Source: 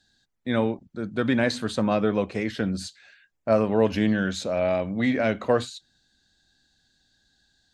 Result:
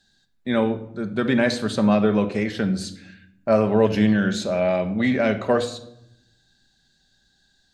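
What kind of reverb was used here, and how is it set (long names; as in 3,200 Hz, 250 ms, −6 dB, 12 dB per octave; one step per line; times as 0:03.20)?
rectangular room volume 2,000 cubic metres, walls furnished, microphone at 1.2 metres
level +2 dB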